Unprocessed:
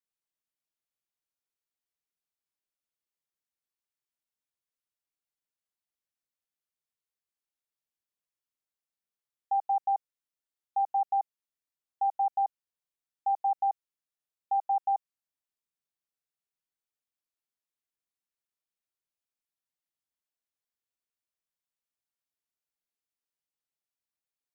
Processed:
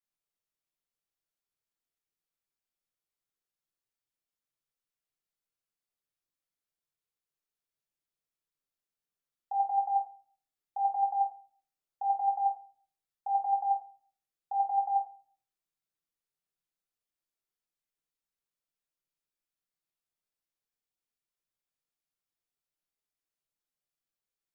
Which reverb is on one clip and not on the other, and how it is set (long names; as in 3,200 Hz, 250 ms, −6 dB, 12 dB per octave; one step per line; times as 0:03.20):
rectangular room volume 45 cubic metres, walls mixed, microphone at 0.78 metres
level −5 dB